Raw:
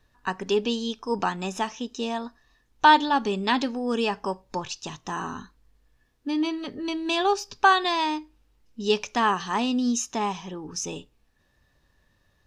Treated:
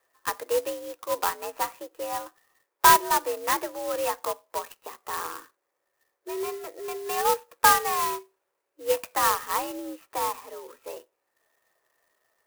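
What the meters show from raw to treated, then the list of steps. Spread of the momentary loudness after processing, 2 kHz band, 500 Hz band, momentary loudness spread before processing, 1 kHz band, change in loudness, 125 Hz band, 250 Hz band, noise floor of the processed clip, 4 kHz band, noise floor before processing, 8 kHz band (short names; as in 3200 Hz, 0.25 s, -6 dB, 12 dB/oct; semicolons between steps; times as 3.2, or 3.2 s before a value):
21 LU, -2.5 dB, -1.0 dB, 14 LU, -1.0 dB, -0.5 dB, -10.5 dB, -14.5 dB, -80 dBFS, -4.5 dB, -67 dBFS, +4.5 dB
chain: mistuned SSB +75 Hz 360–2500 Hz; clock jitter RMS 0.071 ms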